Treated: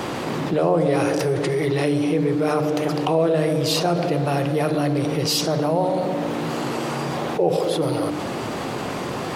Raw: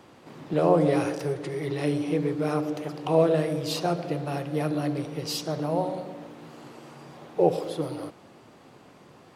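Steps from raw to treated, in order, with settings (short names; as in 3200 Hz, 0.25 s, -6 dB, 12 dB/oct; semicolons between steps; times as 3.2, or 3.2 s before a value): notches 50/100/150/200/250/300 Hz; fast leveller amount 70%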